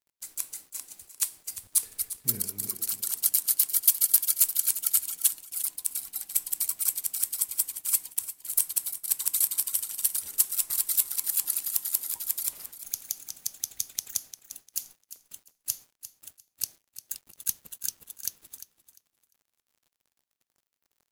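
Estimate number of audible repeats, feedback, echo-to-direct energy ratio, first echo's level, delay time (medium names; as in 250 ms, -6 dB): 2, 22%, -13.0 dB, -13.0 dB, 349 ms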